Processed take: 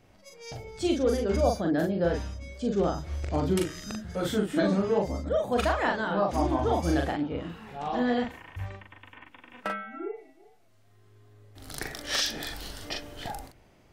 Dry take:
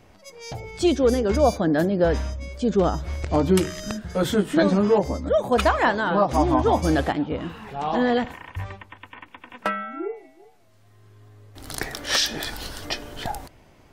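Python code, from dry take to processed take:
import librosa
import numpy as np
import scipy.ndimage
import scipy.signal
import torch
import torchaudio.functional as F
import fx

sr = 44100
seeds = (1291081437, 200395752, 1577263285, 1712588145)

y = fx.peak_eq(x, sr, hz=1000.0, db=-4.0, octaves=0.29)
y = fx.doubler(y, sr, ms=41.0, db=-3)
y = y * librosa.db_to_amplitude(-7.5)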